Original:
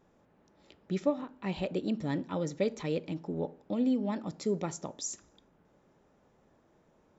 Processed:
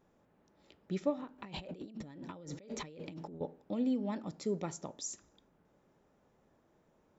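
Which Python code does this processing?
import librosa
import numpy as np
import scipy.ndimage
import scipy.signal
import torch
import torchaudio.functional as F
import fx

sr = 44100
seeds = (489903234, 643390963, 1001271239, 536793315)

y = fx.over_compress(x, sr, threshold_db=-43.0, ratio=-1.0, at=(1.38, 3.41))
y = F.gain(torch.from_numpy(y), -4.0).numpy()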